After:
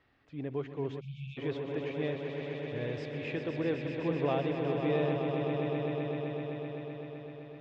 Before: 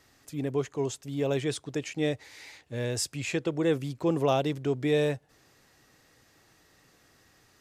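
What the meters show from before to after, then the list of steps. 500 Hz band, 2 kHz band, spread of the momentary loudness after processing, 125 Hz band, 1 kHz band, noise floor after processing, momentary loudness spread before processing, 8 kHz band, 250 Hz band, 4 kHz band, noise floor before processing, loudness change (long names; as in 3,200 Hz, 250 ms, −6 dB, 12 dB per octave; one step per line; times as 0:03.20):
−3.0 dB, −3.0 dB, 11 LU, −2.5 dB, −3.0 dB, −50 dBFS, 12 LU, below −30 dB, −3.0 dB, −8.5 dB, −64 dBFS, −4.5 dB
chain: on a send: echo that builds up and dies away 128 ms, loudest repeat 5, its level −8 dB
on the sum: time-frequency box erased 0:01.01–0:01.38, 230–2,200 Hz
low-pass filter 3,200 Hz 24 dB per octave
level −6.5 dB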